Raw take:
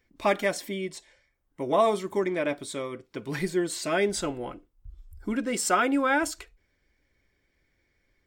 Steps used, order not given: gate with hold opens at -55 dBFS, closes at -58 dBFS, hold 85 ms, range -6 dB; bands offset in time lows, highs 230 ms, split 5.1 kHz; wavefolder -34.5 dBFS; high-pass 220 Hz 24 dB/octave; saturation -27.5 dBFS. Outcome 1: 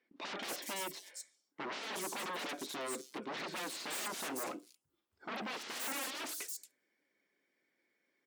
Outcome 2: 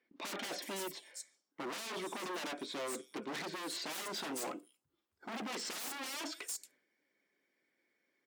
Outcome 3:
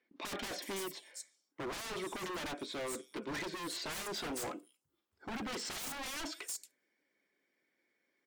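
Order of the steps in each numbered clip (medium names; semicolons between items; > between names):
wavefolder > high-pass > gate with hold > bands offset in time > saturation; bands offset in time > saturation > wavefolder > high-pass > gate with hold; high-pass > gate with hold > bands offset in time > saturation > wavefolder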